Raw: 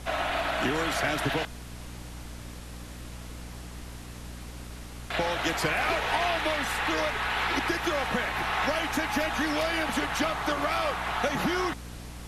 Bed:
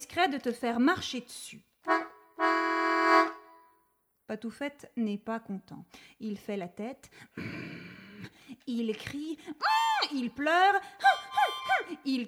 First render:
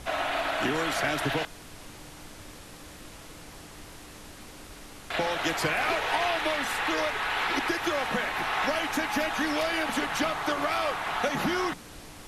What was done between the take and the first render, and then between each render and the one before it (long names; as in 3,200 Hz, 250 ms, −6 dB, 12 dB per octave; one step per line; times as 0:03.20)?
mains-hum notches 60/120/180/240 Hz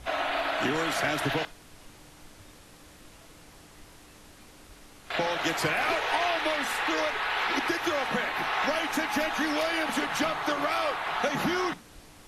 noise reduction from a noise print 6 dB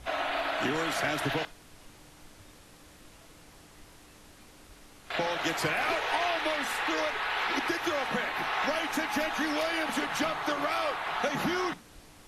level −2 dB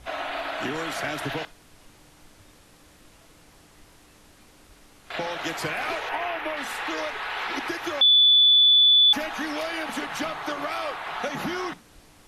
0:06.09–0:06.57: flat-topped bell 5,800 Hz −11 dB
0:08.01–0:09.13: beep over 3,470 Hz −13 dBFS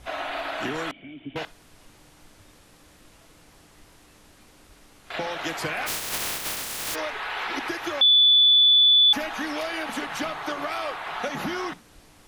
0:00.91–0:01.36: formant resonators in series i
0:05.86–0:06.94: compressing power law on the bin magnitudes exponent 0.1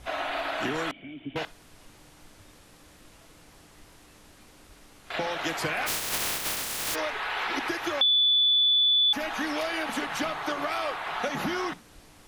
downward compressor 3 to 1, threshold −22 dBFS, peak gain reduction 5.5 dB